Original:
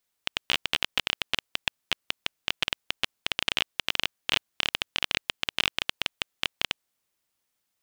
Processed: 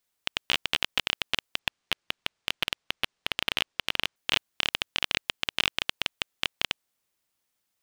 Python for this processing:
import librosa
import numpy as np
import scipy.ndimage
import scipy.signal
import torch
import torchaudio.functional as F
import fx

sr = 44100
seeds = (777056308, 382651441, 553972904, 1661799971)

y = fx.resample_linear(x, sr, factor=3, at=(1.59, 4.16))